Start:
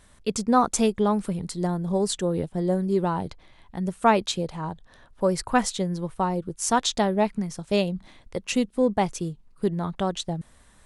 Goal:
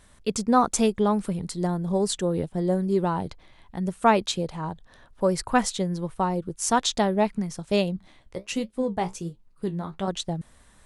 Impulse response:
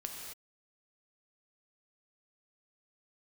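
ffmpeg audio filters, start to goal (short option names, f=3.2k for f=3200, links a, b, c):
-filter_complex "[0:a]asettb=1/sr,asplit=3[a][b][c];[a]atrim=end=7.964[d];[b]atrim=start=7.96:end=10.08,asetpts=PTS-STARTPTS,afade=t=in:d=0.004:c=qsin,afade=t=out:st=2.116:d=0.004:c=qsin,flanger=delay=8.7:depth=9.2:regen=50:speed=1.4:shape=triangular[e];[c]atrim=start=10.076[f];[d][e]acrossfade=d=0.004:c1=hsin:c2=qsin[g];[g][f]acrossfade=d=0.004:c1=qsin:c2=hsin"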